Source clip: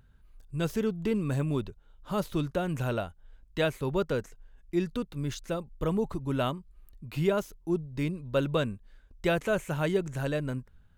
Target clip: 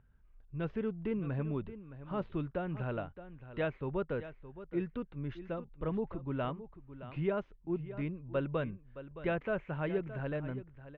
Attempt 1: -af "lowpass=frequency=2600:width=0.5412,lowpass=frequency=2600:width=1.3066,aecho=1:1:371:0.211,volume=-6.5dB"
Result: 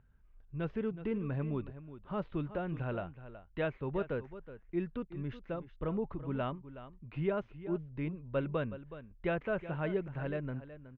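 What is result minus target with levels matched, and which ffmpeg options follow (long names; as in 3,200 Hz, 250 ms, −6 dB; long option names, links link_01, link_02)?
echo 247 ms early
-af "lowpass=frequency=2600:width=0.5412,lowpass=frequency=2600:width=1.3066,aecho=1:1:618:0.211,volume=-6.5dB"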